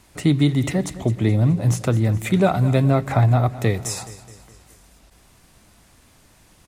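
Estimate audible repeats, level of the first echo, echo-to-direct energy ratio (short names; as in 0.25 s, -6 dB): 4, -16.0 dB, -14.5 dB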